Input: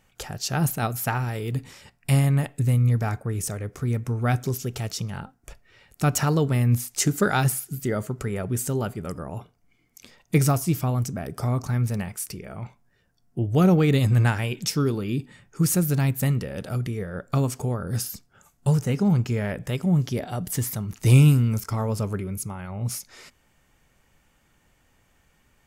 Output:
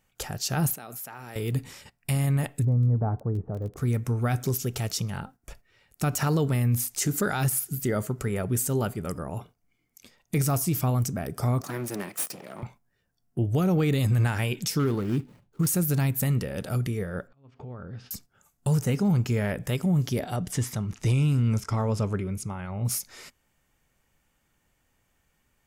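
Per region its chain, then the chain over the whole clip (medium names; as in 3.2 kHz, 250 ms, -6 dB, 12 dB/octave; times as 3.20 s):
0.74–1.36 s: high-pass 230 Hz + level held to a coarse grid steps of 21 dB
2.62–3.76 s: low-pass 1 kHz 24 dB/octave + crackle 16 per s -35 dBFS + tape noise reduction on one side only decoder only
11.61–12.63 s: comb filter that takes the minimum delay 1.6 ms + high-pass 180 Hz 24 dB/octave
14.79–15.67 s: median filter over 25 samples + dynamic bell 1.3 kHz, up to +5 dB, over -47 dBFS, Q 1.3
17.27–18.11 s: low-pass 3.4 kHz 24 dB/octave + compression 4:1, threshold -38 dBFS + slow attack 379 ms
20.36–22.85 s: low-pass 6.2 kHz + band-stop 4.4 kHz, Q 14
whole clip: gate -48 dBFS, range -8 dB; treble shelf 9.4 kHz +7 dB; peak limiter -17 dBFS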